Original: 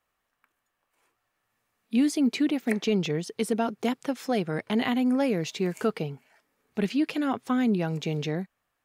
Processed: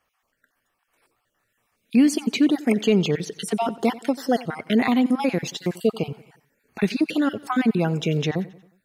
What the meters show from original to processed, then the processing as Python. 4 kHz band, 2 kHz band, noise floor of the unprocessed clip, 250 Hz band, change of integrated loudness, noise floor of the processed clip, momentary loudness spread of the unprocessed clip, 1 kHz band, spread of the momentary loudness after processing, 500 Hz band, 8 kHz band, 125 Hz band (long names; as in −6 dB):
+4.5 dB, +4.5 dB, −80 dBFS, +4.5 dB, +4.5 dB, −75 dBFS, 8 LU, +5.0 dB, 8 LU, +4.5 dB, +5.0 dB, +5.0 dB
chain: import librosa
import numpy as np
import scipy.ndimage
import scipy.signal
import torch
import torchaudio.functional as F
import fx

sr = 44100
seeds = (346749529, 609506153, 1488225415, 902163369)

p1 = fx.spec_dropout(x, sr, seeds[0], share_pct=34)
p2 = p1 + fx.echo_feedback(p1, sr, ms=90, feedback_pct=49, wet_db=-19.5, dry=0)
y = p2 * 10.0 ** (6.5 / 20.0)